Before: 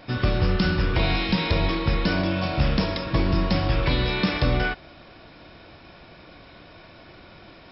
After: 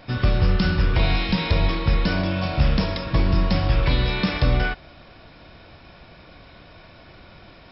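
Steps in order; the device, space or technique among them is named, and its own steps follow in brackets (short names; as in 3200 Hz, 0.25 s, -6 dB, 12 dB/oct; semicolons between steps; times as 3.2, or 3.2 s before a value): low shelf boost with a cut just above (low shelf 96 Hz +6 dB; bell 330 Hz -3.5 dB 0.53 oct)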